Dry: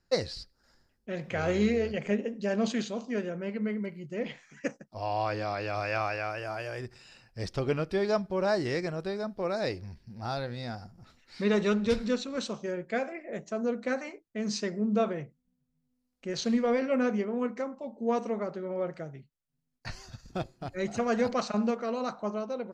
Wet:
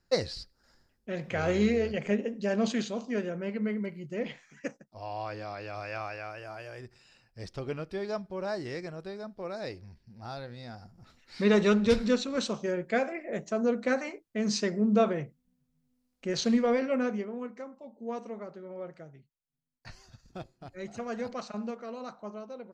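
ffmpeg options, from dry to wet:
ffmpeg -i in.wav -af "volume=10dB,afade=type=out:start_time=4.14:duration=0.79:silence=0.446684,afade=type=in:start_time=10.71:duration=0.78:silence=0.334965,afade=type=out:start_time=16.33:duration=1.13:silence=0.281838" out.wav

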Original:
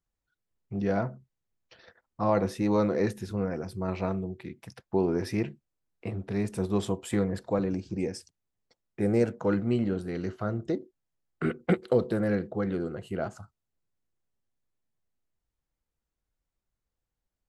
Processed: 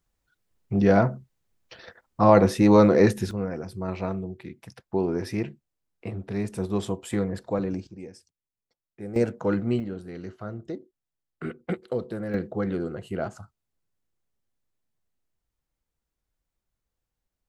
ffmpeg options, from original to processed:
ffmpeg -i in.wav -af "asetnsamples=nb_out_samples=441:pad=0,asendcmd='3.31 volume volume 0.5dB;7.87 volume volume -10dB;9.16 volume volume 1.5dB;9.8 volume volume -5dB;12.34 volume volume 2dB',volume=9dB" out.wav

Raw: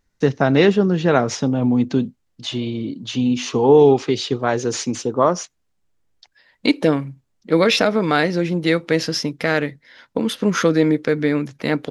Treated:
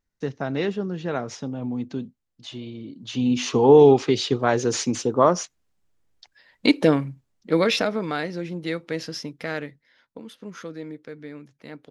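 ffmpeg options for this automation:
ffmpeg -i in.wav -af "volume=-1dB,afade=type=in:start_time=2.93:duration=0.48:silence=0.298538,afade=type=out:start_time=7.03:duration=1.15:silence=0.334965,afade=type=out:start_time=9.55:duration=0.68:silence=0.334965" out.wav

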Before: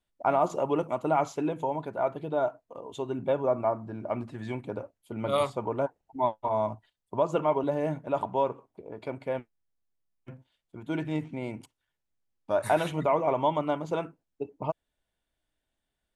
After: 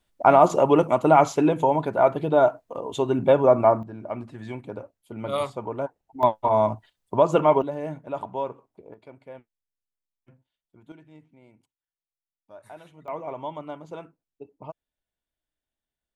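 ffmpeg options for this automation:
ffmpeg -i in.wav -af "asetnsamples=nb_out_samples=441:pad=0,asendcmd='3.83 volume volume -0.5dB;6.23 volume volume 7.5dB;7.62 volume volume -2.5dB;8.94 volume volume -11dB;10.92 volume volume -19.5dB;13.08 volume volume -8dB',volume=9.5dB" out.wav

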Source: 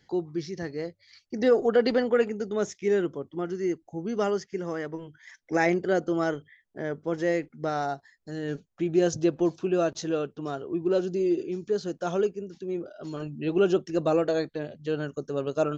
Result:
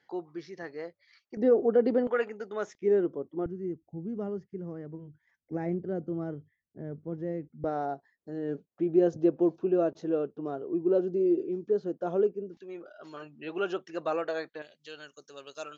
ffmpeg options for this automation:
ffmpeg -i in.wav -af "asetnsamples=nb_out_samples=441:pad=0,asendcmd='1.37 bandpass f 320;2.07 bandpass f 1200;2.75 bandpass f 410;3.46 bandpass f 120;7.64 bandpass f 400;12.57 bandpass f 1500;14.62 bandpass f 4500',bandpass=frequency=1100:width_type=q:width=0.81:csg=0" out.wav

